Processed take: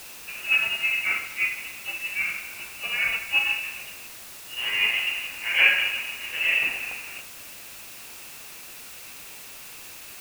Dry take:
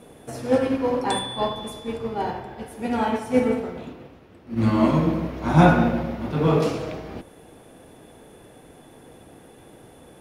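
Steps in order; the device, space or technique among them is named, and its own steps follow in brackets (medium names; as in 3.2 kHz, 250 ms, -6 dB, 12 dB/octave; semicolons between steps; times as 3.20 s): scrambled radio voice (band-pass 390–3000 Hz; frequency inversion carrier 3.1 kHz; white noise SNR 14 dB)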